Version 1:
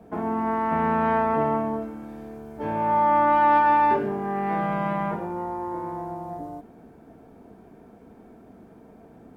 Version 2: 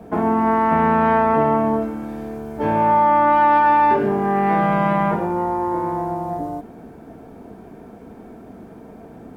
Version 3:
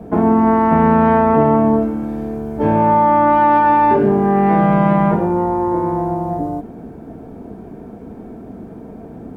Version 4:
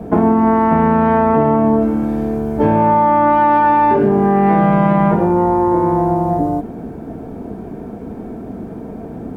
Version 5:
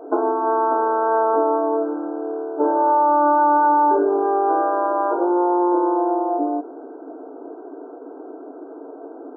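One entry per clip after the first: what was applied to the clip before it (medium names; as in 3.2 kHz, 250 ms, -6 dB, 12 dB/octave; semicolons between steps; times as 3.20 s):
compression 3:1, threshold -22 dBFS, peak gain reduction 5.5 dB; trim +9 dB
tilt shelf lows +5 dB, about 710 Hz; trim +3 dB
compression, threshold -14 dBFS, peak gain reduction 6 dB; trim +5 dB
brick-wall FIR band-pass 270–1600 Hz; trim -3.5 dB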